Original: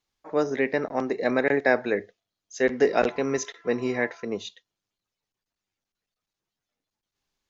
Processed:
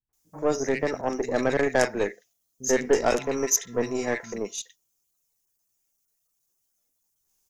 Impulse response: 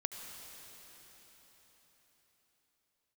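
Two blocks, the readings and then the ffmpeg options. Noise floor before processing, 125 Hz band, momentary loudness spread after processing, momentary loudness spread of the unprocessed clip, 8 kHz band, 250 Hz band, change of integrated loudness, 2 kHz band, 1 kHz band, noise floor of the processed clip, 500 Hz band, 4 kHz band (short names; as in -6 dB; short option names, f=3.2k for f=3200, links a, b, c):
under -85 dBFS, +1.5 dB, 10 LU, 10 LU, n/a, -1.5 dB, 0.0 dB, -3.0 dB, 0.0 dB, -76 dBFS, -0.5 dB, +2.5 dB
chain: -filter_complex "[0:a]acrossover=split=190|1800[a][b][c];[b]adelay=90[d];[c]adelay=130[e];[a][d][e]amix=inputs=3:normalize=0,aeval=exprs='0.422*(cos(1*acos(clip(val(0)/0.422,-1,1)))-cos(1*PI/2))+0.0596*(cos(4*acos(clip(val(0)/0.422,-1,1)))-cos(4*PI/2))+0.075*(cos(6*acos(clip(val(0)/0.422,-1,1)))-cos(6*PI/2))+0.00841*(cos(8*acos(clip(val(0)/0.422,-1,1)))-cos(8*PI/2))':c=same,aexciter=amount=9:drive=3.4:freq=5.9k"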